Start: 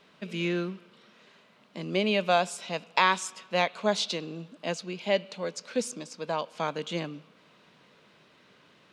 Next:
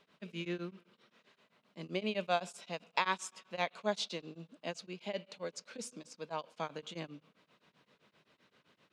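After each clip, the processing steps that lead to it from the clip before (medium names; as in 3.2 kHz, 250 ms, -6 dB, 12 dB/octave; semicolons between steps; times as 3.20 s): tremolo of two beating tones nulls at 7.7 Hz; trim -7 dB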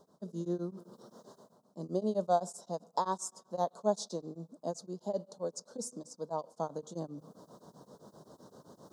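Chebyshev band-stop 820–6500 Hz, order 2; reverse; upward compressor, threshold -47 dBFS; reverse; trim +5 dB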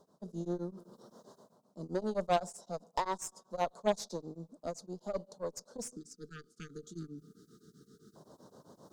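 Chebyshev shaper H 4 -13 dB, 6 -13 dB, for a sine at -16 dBFS; spectral selection erased 5.96–8.16 s, 460–1200 Hz; trim -2 dB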